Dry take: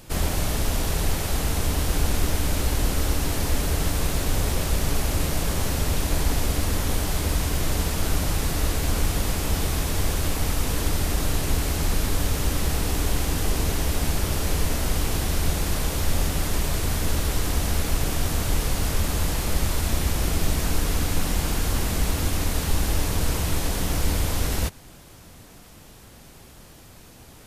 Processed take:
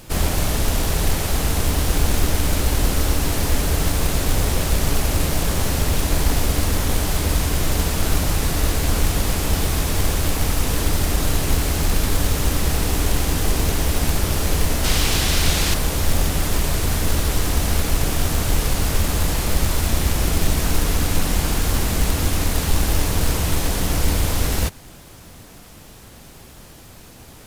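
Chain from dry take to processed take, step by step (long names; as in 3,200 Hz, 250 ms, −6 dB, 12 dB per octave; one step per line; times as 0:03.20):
0:14.84–0:15.74: parametric band 3,600 Hz +8.5 dB 2.4 octaves
in parallel at −4.5 dB: log-companded quantiser 4 bits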